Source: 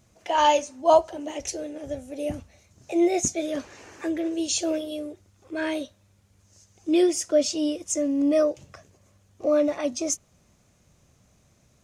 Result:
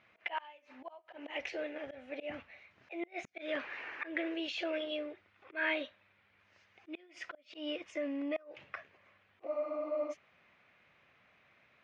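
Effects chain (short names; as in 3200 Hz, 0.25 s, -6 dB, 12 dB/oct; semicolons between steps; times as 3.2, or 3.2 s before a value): flipped gate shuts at -13 dBFS, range -34 dB; limiter -23 dBFS, peak gain reduction 10.5 dB; auto swell 0.134 s; band-pass 2200 Hz, Q 1.8; air absorption 380 m; spectral freeze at 9.49, 0.63 s; gain +13 dB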